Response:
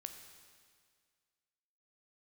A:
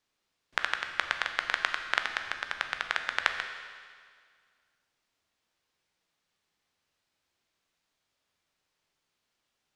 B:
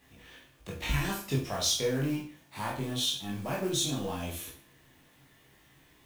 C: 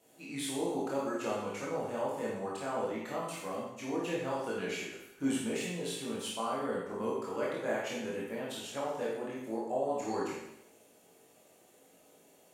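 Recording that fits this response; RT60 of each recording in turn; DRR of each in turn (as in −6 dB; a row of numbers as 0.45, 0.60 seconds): A; 1.9, 0.40, 0.80 seconds; 6.0, −4.0, −6.0 decibels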